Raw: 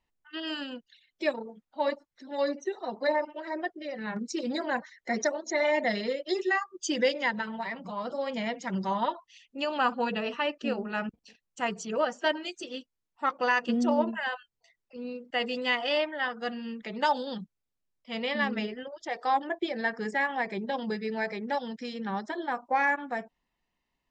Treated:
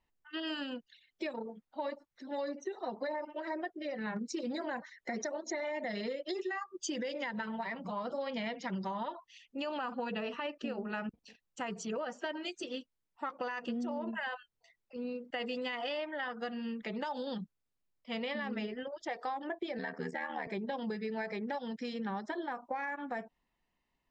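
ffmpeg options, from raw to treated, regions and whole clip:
-filter_complex "[0:a]asettb=1/sr,asplit=3[a][b][c];[a]atrim=end=8.204[d];[b]atrim=start=8.2:end=8.85,asetpts=PTS-STARTPTS,afade=t=in:d=0.004:c=qsin,afade=t=out:st=0.646:d=0.004:c=qsin,lowpass=f=5.1k:w=0.5412,lowpass=f=5.1k:w=1.3066,highshelf=f=3.3k:g=8.5[e];[c]atrim=start=8.846[f];[d][e]acrossfade=d=0.004:c1=hsin:c2=qsin[g];[g][f]acrossfade=d=0.004:c1=qsin:c2=hsin,asettb=1/sr,asplit=3[h][i][j];[h]atrim=end=19.784[k];[i]atrim=start=19.78:end=20.47,asetpts=PTS-STARTPTS,afade=t=in:d=0.004:c=qsin,afade=t=out:st=0.686:d=0.004:c=qsin,bandreject=f=7.1k:w=22,aeval=exprs='val(0)*sin(2*PI*39*n/s)':c=same[l];[j]atrim=start=20.466[m];[k][l]acrossfade=d=0.004:c1=hsin:c2=qsin[n];[n][m]acrossfade=d=0.004:c1=qsin:c2=hsin,highshelf=f=4.1k:g=-5.5,alimiter=limit=-23.5dB:level=0:latency=1:release=61,acompressor=threshold=-34dB:ratio=6"

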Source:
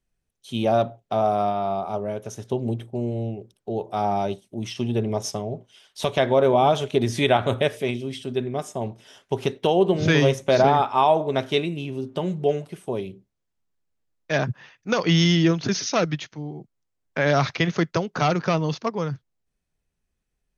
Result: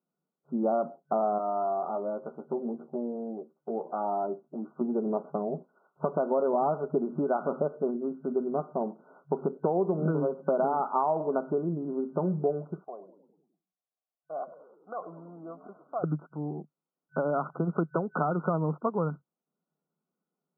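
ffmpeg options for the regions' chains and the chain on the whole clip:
-filter_complex "[0:a]asettb=1/sr,asplit=3[a][b][c];[a]atrim=end=1.384[d];[b]atrim=start=1.38:end=4.81,asetpts=PTS-STARTPTS,afade=t=in:d=0.004:c=qsin,afade=t=out:st=3.426:d=0.004:c=qsin,acompressor=threshold=-30dB:ratio=2:attack=3.2:release=140:knee=1:detection=peak,lowshelf=f=170:g=-9,asplit=2[e][f];[f]adelay=13,volume=-5dB[g];[e][g]amix=inputs=2:normalize=0,atrim=end_sample=151263[h];[c]atrim=start=4.806[i];[d][h]acrossfade=d=0.004:c1=hsin:c2=qsin[j];[j][i]acrossfade=d=0.004:c1=qsin:c2=hsin,asettb=1/sr,asplit=3[k][l][m];[k]atrim=end=12.844[n];[l]atrim=start=12.84:end=16.04,asetpts=PTS-STARTPTS,afade=t=in:d=0.004:c=qsin,afade=t=out:st=3.196:d=0.004:c=qsin,acompressor=threshold=-26dB:ratio=1.5:attack=3.2:release=140:knee=1:detection=peak,asplit=3[o][p][q];[o]bandpass=f=730:t=q:w=8,volume=0dB[r];[p]bandpass=f=1.09k:t=q:w=8,volume=-6dB[s];[q]bandpass=f=2.44k:t=q:w=8,volume=-9dB[t];[r][s][t]amix=inputs=3:normalize=0,asplit=7[u][v][w][x][y][z][aa];[v]adelay=101,afreqshift=-63,volume=-14.5dB[ab];[w]adelay=202,afreqshift=-126,volume=-18.9dB[ac];[x]adelay=303,afreqshift=-189,volume=-23.4dB[ad];[y]adelay=404,afreqshift=-252,volume=-27.8dB[ae];[z]adelay=505,afreqshift=-315,volume=-32.2dB[af];[aa]adelay=606,afreqshift=-378,volume=-36.7dB[ag];[u][ab][ac][ad][ae][af][ag]amix=inputs=7:normalize=0,atrim=end_sample=141120[ah];[m]atrim=start=16.036[ai];[n][ah]acrossfade=d=0.004:c1=hsin:c2=qsin[aj];[aj][ai]acrossfade=d=0.004:c1=qsin:c2=hsin,acompressor=threshold=-23dB:ratio=6,afftfilt=real='re*between(b*sr/4096,140,1500)':imag='im*between(b*sr/4096,140,1500)':win_size=4096:overlap=0.75"

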